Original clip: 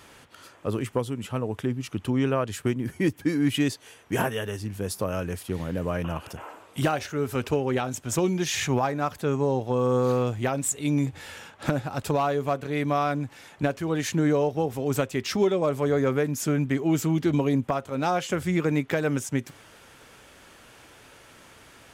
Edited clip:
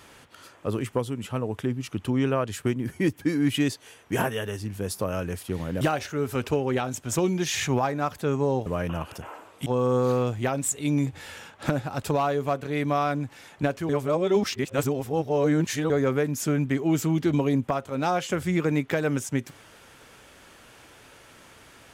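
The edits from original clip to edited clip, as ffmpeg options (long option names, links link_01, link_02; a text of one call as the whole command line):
ffmpeg -i in.wav -filter_complex "[0:a]asplit=6[link_01][link_02][link_03][link_04][link_05][link_06];[link_01]atrim=end=5.812[link_07];[link_02]atrim=start=6.808:end=9.662[link_08];[link_03]atrim=start=5.808:end=6.812[link_09];[link_04]atrim=start=9.658:end=13.892[link_10];[link_05]atrim=start=13.888:end=15.902,asetpts=PTS-STARTPTS,areverse[link_11];[link_06]atrim=start=15.898[link_12];[link_07][link_08]acrossfade=duration=0.004:curve1=hsin:curve2=hsin[link_13];[link_13][link_09]acrossfade=duration=0.004:curve1=hsin:curve2=hsin[link_14];[link_14][link_10]acrossfade=duration=0.004:curve1=hsin:curve2=hsin[link_15];[link_15][link_11]acrossfade=duration=0.004:curve1=hsin:curve2=hsin[link_16];[link_16][link_12]acrossfade=duration=0.004:curve1=hsin:curve2=hsin" out.wav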